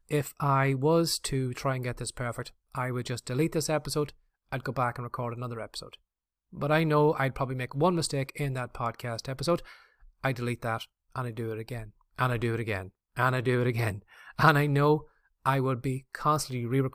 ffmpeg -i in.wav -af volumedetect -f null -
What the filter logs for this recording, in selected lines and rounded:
mean_volume: -29.5 dB
max_volume: -7.3 dB